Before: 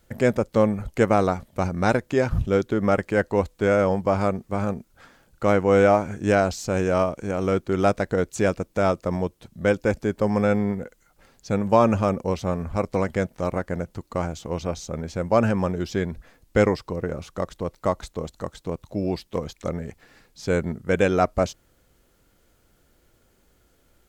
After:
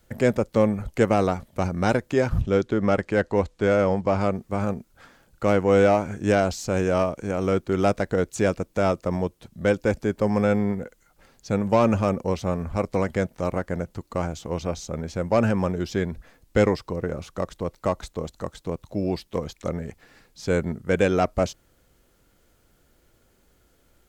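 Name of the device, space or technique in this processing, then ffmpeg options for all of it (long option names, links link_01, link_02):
one-band saturation: -filter_complex "[0:a]asettb=1/sr,asplit=3[link_01][link_02][link_03];[link_01]atrim=end=2.414[link_04];[link_02]atrim=start=2.41:end=4.33,asetpts=PTS-STARTPTS,afade=type=in:duration=0.004:curve=qsin,afade=type=out:start_time=1.916:duration=0.004:curve=qsin,lowpass=7500[link_05];[link_03]atrim=start=4.326[link_06];[link_04][link_05]acrossfade=duration=0.004:curve1=hsin:curve2=qsin[link_07];[link_07][link_06]acrossfade=duration=0.004:curve1=qsin:curve2=hsin,acrossover=split=560|2200[link_08][link_09][link_10];[link_09]asoftclip=type=tanh:threshold=-18.5dB[link_11];[link_08][link_11][link_10]amix=inputs=3:normalize=0"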